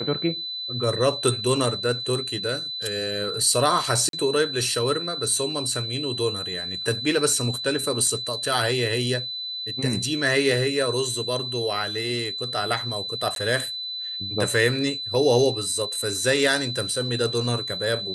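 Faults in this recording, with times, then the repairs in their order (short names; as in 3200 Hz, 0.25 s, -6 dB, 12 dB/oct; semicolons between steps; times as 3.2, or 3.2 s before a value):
tone 4000 Hz -29 dBFS
4.09–4.13 gap 42 ms
13.35–13.36 gap 12 ms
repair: notch 4000 Hz, Q 30; interpolate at 4.09, 42 ms; interpolate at 13.35, 12 ms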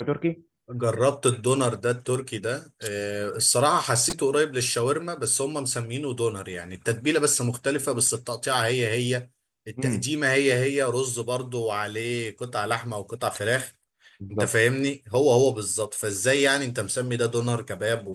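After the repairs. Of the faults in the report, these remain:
none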